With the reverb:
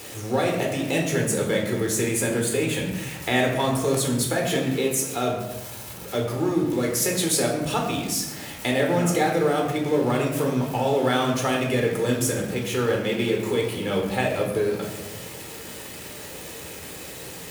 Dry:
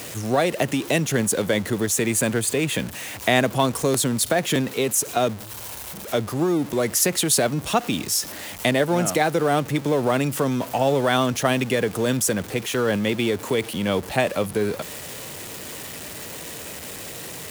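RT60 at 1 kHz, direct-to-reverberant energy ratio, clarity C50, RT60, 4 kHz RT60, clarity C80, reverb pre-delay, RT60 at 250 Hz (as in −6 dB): 0.95 s, −0.5 dB, 5.0 dB, 1.1 s, 0.70 s, 7.0 dB, 12 ms, 1.7 s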